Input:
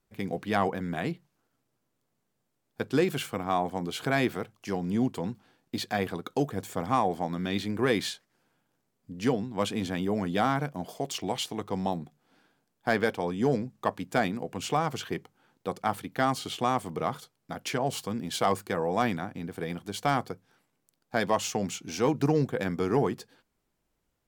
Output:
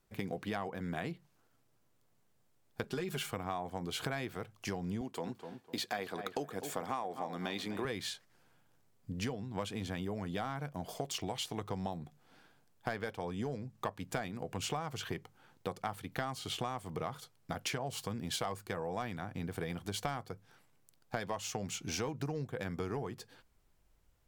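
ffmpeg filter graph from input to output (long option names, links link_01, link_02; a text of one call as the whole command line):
ffmpeg -i in.wav -filter_complex "[0:a]asettb=1/sr,asplit=3[link_01][link_02][link_03];[link_01]atrim=end=2.834[link_04];[link_02]atrim=start=2.83:end=3.31,asetpts=PTS-STARTPTS,afade=type=in:duration=0.004:curve=qsin,afade=type=out:start_time=0.476:duration=0.004:curve=qsin,aecho=1:1:4.9:0.8,atrim=end_sample=21168,acompressor=threshold=-24dB:ratio=3:attack=3.2:release=140:knee=1:detection=peak[link_05];[link_03]atrim=start=3.306[link_06];[link_04][link_05]acrossfade=duration=0.004:curve1=hsin:curve2=qsin[link_07];[link_07][link_06]acrossfade=duration=0.004:curve1=qsin:curve2=hsin,asettb=1/sr,asplit=3[link_08][link_09][link_10];[link_08]atrim=end=5.014[link_11];[link_09]atrim=start=5.01:end=7.85,asetpts=PTS-STARTPTS,afade=type=in:duration=0.004:curve=qsin,afade=type=out:start_time=2.836:duration=0.004:curve=qsin,highpass=250,asplit=2[link_12][link_13];[link_13]adelay=251,lowpass=frequency=2300:poles=1,volume=-13dB,asplit=2[link_14][link_15];[link_15]adelay=251,lowpass=frequency=2300:poles=1,volume=0.31,asplit=2[link_16][link_17];[link_17]adelay=251,lowpass=frequency=2300:poles=1,volume=0.31[link_18];[link_12][link_14][link_16][link_18]amix=inputs=4:normalize=0,atrim=end_sample=125244[link_19];[link_10]atrim=start=7.846[link_20];[link_11][link_19]acrossfade=duration=0.004:curve1=hsin:curve2=qsin[link_21];[link_21][link_20]acrossfade=duration=0.004:curve1=qsin:curve2=hsin,asubboost=boost=2.5:cutoff=120,acompressor=threshold=-36dB:ratio=10,equalizer=frequency=260:width=1.5:gain=-2,volume=2.5dB" out.wav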